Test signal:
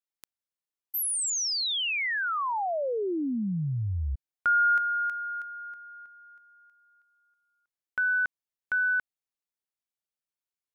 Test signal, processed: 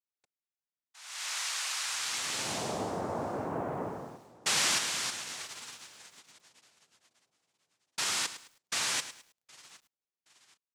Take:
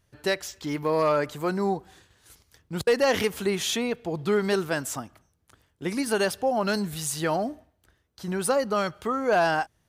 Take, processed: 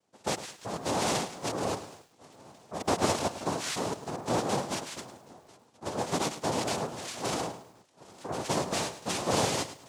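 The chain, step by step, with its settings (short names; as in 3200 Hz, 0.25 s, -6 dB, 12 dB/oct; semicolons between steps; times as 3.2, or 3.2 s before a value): tape echo 0.769 s, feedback 52%, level -20 dB, low-pass 1400 Hz; noise vocoder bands 2; lo-fi delay 0.106 s, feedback 35%, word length 8-bit, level -12.5 dB; gain -6 dB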